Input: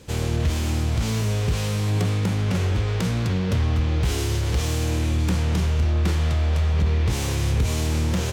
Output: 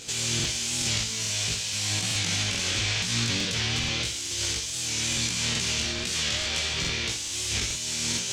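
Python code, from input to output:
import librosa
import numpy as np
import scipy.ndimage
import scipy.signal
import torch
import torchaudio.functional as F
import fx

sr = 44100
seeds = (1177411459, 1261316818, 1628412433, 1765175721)

y = fx.peak_eq(x, sr, hz=7200.0, db=14.5, octaves=1.5)
y = fx.dmg_noise_colour(y, sr, seeds[0], colour='brown', level_db=-38.0)
y = fx.weighting(y, sr, curve='D')
y = fx.over_compress(y, sr, threshold_db=-22.0, ratio=-1.0)
y = fx.doubler(y, sr, ms=18.0, db=-2.5)
y = fx.room_flutter(y, sr, wall_m=10.4, rt60_s=0.43)
y = fx.buffer_crackle(y, sr, first_s=0.35, period_s=0.43, block=2048, kind='repeat')
y = fx.record_warp(y, sr, rpm=45.0, depth_cents=100.0)
y = y * 10.0 ** (-9.0 / 20.0)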